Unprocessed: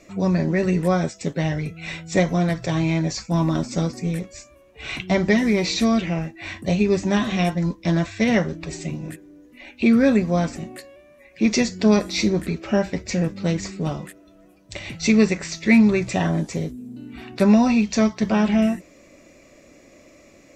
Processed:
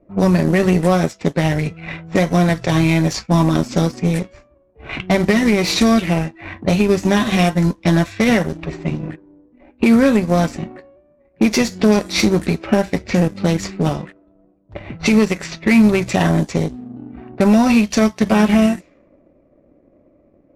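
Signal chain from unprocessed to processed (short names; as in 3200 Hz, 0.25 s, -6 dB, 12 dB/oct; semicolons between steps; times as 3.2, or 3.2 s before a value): CVSD 64 kbps; power-law curve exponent 1.4; compressor 2:1, threshold -28 dBFS, peak gain reduction 9 dB; low-pass opened by the level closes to 610 Hz, open at -27.5 dBFS; maximiser +17.5 dB; gain -2.5 dB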